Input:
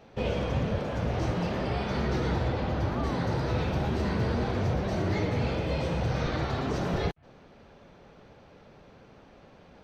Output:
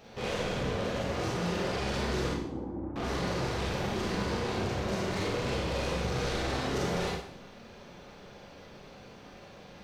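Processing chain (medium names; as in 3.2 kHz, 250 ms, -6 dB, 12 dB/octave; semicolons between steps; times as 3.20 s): 2.29–2.96 s: cascade formant filter u; dynamic bell 410 Hz, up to +6 dB, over -45 dBFS, Q 1.4; saturation -33.5 dBFS, distortion -7 dB; treble shelf 3.1 kHz +10.5 dB; Schroeder reverb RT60 0.62 s, combs from 31 ms, DRR -3 dB; trim -1.5 dB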